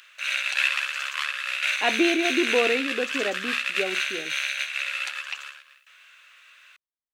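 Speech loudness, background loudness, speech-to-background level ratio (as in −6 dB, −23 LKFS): −28.0 LKFS, −25.5 LKFS, −2.5 dB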